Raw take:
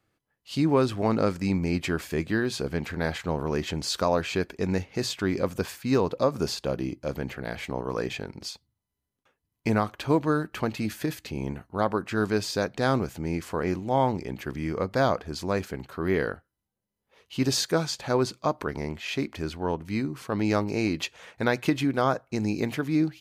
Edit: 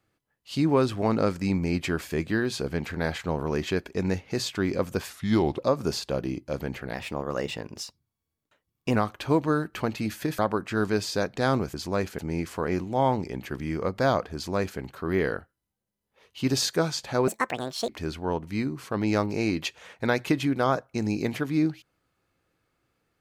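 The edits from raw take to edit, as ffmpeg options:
ffmpeg -i in.wav -filter_complex "[0:a]asplit=11[link_01][link_02][link_03][link_04][link_05][link_06][link_07][link_08][link_09][link_10][link_11];[link_01]atrim=end=3.702[link_12];[link_02]atrim=start=4.338:end=5.744[link_13];[link_03]atrim=start=5.74:end=6.14,asetpts=PTS-STARTPTS,asetrate=36162,aresample=44100,atrim=end_sample=21512,asetpts=PTS-STARTPTS[link_14];[link_04]atrim=start=6.136:end=7.494[link_15];[link_05]atrim=start=7.49:end=9.75,asetpts=PTS-STARTPTS,asetrate=49392,aresample=44100,atrim=end_sample=88987,asetpts=PTS-STARTPTS[link_16];[link_06]atrim=start=9.746:end=11.182[link_17];[link_07]atrim=start=11.788:end=13.142[link_18];[link_08]atrim=start=15.298:end=15.752[link_19];[link_09]atrim=start=13.138:end=18.234[link_20];[link_10]atrim=start=18.23:end=19.26,asetpts=PTS-STARTPTS,asetrate=74970,aresample=44100,atrim=end_sample=26719,asetpts=PTS-STARTPTS[link_21];[link_11]atrim=start=19.256[link_22];[link_12][link_13]acrossfade=duration=0.004:curve1=hsin:curve2=hsin[link_23];[link_23][link_14]acrossfade=duration=0.004:curve1=hsin:curve2=hsin[link_24];[link_24][link_15]acrossfade=duration=0.004:curve1=hsin:curve2=hsin[link_25];[link_25][link_16]acrossfade=duration=0.004:curve1=hsin:curve2=hsin[link_26];[link_26][link_17]acrossfade=duration=0.004:curve1=hsin:curve2=hsin[link_27];[link_27][link_18]acrossfade=duration=0.004:curve1=hsin:curve2=hsin[link_28];[link_28][link_19]acrossfade=duration=0.004:curve1=hsin:curve2=hsin[link_29];[link_29][link_20]acrossfade=duration=0.004:curve1=hsin:curve2=hsin[link_30];[link_30][link_21]acrossfade=duration=0.004:curve1=hsin:curve2=hsin[link_31];[link_31][link_22]acrossfade=duration=0.004:curve1=hsin:curve2=hsin" out.wav

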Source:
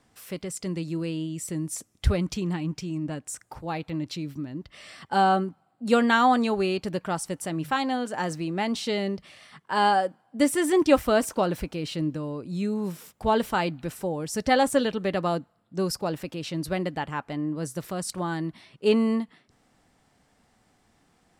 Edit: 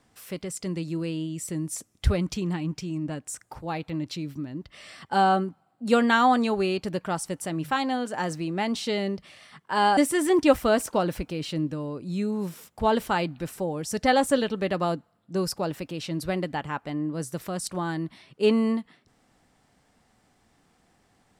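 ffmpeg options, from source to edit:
ffmpeg -i in.wav -filter_complex "[0:a]asplit=2[link_01][link_02];[link_01]atrim=end=9.972[link_03];[link_02]atrim=start=10.398[link_04];[link_03][link_04]acrossfade=duration=0.004:curve1=hsin:curve2=hsin" out.wav

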